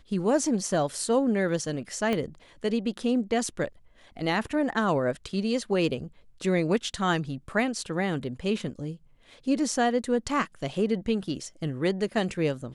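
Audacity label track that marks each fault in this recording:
2.130000	2.130000	pop -15 dBFS

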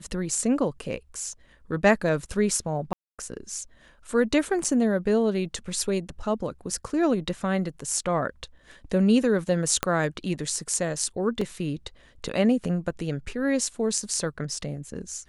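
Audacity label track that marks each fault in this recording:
2.930000	3.190000	gap 0.256 s
4.640000	4.650000	gap 5.2 ms
9.830000	9.830000	pop -7 dBFS
11.410000	11.410000	gap 4 ms

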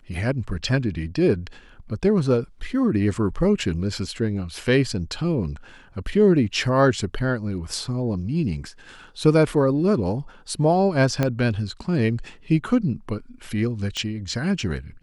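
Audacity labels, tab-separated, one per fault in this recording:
11.230000	11.230000	pop -8 dBFS
13.970000	13.970000	pop -15 dBFS

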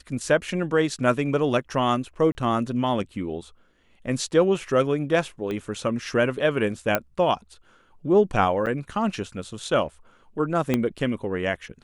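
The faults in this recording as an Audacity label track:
2.320000	2.350000	gap 30 ms
5.510000	5.510000	pop -19 dBFS
6.950000	6.950000	pop -7 dBFS
8.660000	8.670000	gap 8.3 ms
10.740000	10.740000	pop -9 dBFS

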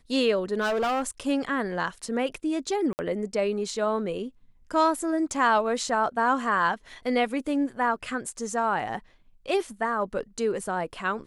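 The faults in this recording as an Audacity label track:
0.600000	1.090000	clipped -22.5 dBFS
2.930000	2.990000	gap 59 ms

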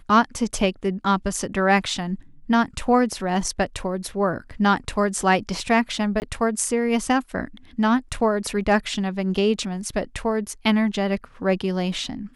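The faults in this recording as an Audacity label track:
6.200000	6.220000	gap 19 ms

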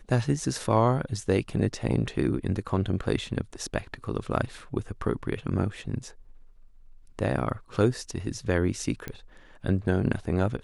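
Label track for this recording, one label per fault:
9.080000	9.080000	pop -19 dBFS

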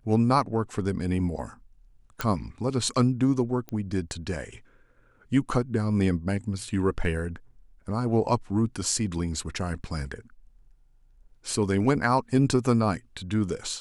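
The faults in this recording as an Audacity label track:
2.210000	2.210000	pop -12 dBFS
3.690000	3.690000	pop -21 dBFS

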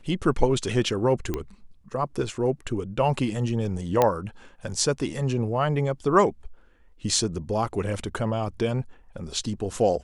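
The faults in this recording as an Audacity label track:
1.340000	1.340000	pop -14 dBFS
4.020000	4.020000	pop -7 dBFS

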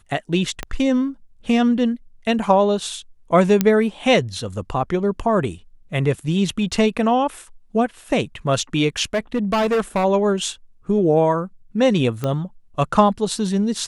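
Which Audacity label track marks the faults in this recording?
0.630000	0.630000	pop -11 dBFS
3.610000	3.610000	pop -3 dBFS
9.140000	10.050000	clipped -15.5 dBFS
12.240000	12.240000	pop -11 dBFS

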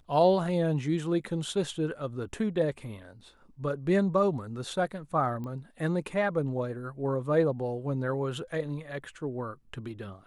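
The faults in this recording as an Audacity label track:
5.440000	5.440000	pop -28 dBFS

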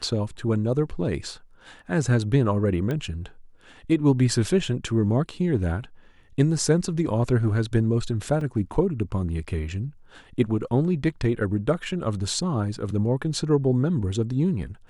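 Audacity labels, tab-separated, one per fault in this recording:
2.910000	2.910000	pop -17 dBFS
8.410000	8.410000	gap 3.5 ms

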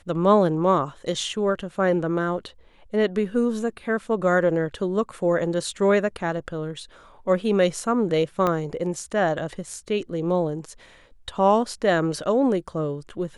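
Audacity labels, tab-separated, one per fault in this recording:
8.470000	8.470000	pop -11 dBFS

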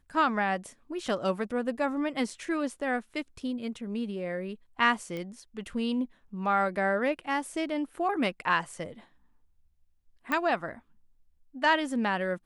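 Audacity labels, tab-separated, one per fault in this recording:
5.170000	5.170000	pop -24 dBFS
10.320000	10.320000	pop -16 dBFS

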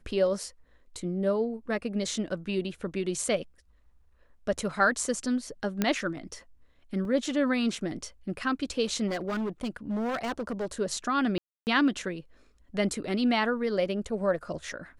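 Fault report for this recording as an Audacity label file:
5.820000	5.820000	pop -11 dBFS
7.050000	7.050000	gap 2 ms
9.070000	10.660000	clipped -27.5 dBFS
11.380000	11.670000	gap 0.289 s

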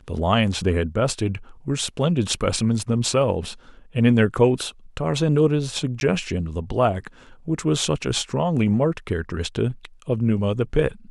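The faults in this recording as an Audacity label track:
6.000000	6.010000	gap 11 ms

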